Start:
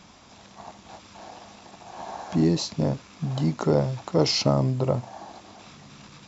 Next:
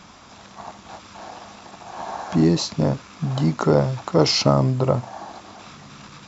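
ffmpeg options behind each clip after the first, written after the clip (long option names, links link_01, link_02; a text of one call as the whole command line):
ffmpeg -i in.wav -af "equalizer=frequency=1300:width_type=o:width=0.82:gain=5,volume=4dB" out.wav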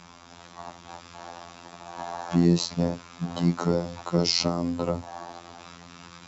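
ffmpeg -i in.wav -filter_complex "[0:a]afftfilt=real='hypot(re,im)*cos(PI*b)':imag='0':win_size=2048:overlap=0.75,acrossover=split=330|3000[link_01][link_02][link_03];[link_02]acompressor=threshold=-27dB:ratio=6[link_04];[link_01][link_04][link_03]amix=inputs=3:normalize=0" out.wav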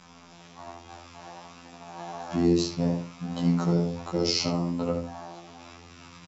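ffmpeg -i in.wav -filter_complex "[0:a]flanger=delay=15.5:depth=5.3:speed=0.6,asplit=2[link_01][link_02];[link_02]adelay=70,lowpass=frequency=2400:poles=1,volume=-4dB,asplit=2[link_03][link_04];[link_04]adelay=70,lowpass=frequency=2400:poles=1,volume=0.37,asplit=2[link_05][link_06];[link_06]adelay=70,lowpass=frequency=2400:poles=1,volume=0.37,asplit=2[link_07][link_08];[link_08]adelay=70,lowpass=frequency=2400:poles=1,volume=0.37,asplit=2[link_09][link_10];[link_10]adelay=70,lowpass=frequency=2400:poles=1,volume=0.37[link_11];[link_03][link_05][link_07][link_09][link_11]amix=inputs=5:normalize=0[link_12];[link_01][link_12]amix=inputs=2:normalize=0" out.wav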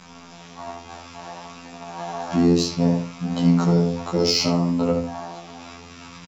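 ffmpeg -i in.wav -filter_complex "[0:a]asplit=2[link_01][link_02];[link_02]asoftclip=type=tanh:threshold=-20.5dB,volume=-6dB[link_03];[link_01][link_03]amix=inputs=2:normalize=0,asplit=2[link_04][link_05];[link_05]adelay=16,volume=-8dB[link_06];[link_04][link_06]amix=inputs=2:normalize=0,volume=3dB" out.wav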